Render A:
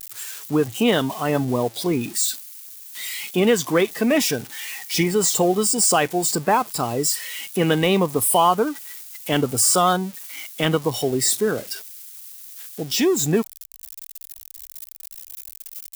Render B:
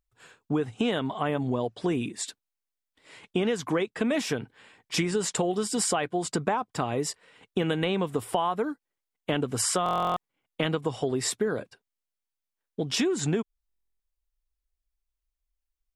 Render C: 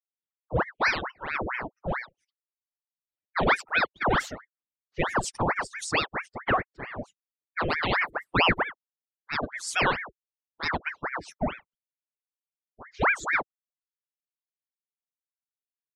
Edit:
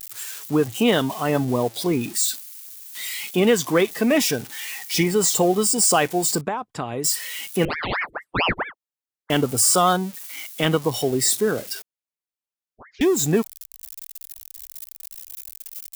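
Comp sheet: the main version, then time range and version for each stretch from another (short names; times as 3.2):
A
6.41–7.04 from B
7.65–9.3 from C
11.82–13.01 from C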